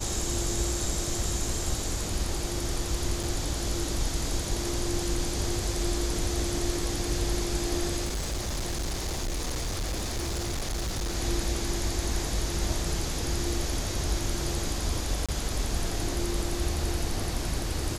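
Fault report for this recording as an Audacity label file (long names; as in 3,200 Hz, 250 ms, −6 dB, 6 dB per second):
3.230000	3.230000	drop-out 5 ms
8.040000	11.160000	clipping −27 dBFS
15.260000	15.290000	drop-out 26 ms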